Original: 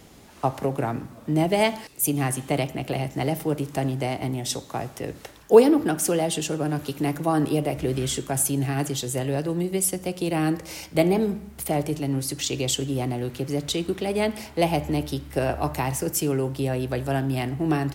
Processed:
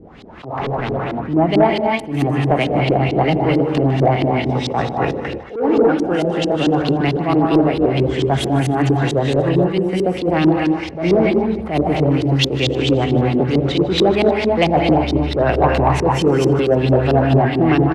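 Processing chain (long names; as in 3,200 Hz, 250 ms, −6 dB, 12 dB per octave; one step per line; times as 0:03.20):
in parallel at +3 dB: downward compressor, threshold −33 dBFS, peak gain reduction 23 dB
on the sum: reverb whose tail is shaped and stops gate 310 ms rising, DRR 1 dB
automatic gain control gain up to 9 dB
0:00.61–0:01.20: hard clipping −20 dBFS, distortion −21 dB
auto-filter low-pass saw up 4.5 Hz 300–4,400 Hz
soft clipping −2.5 dBFS, distortion −20 dB
on a send: repeating echo 153 ms, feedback 57%, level −20 dB
on the sum: level that may rise only so fast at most 130 dB per second
level −1 dB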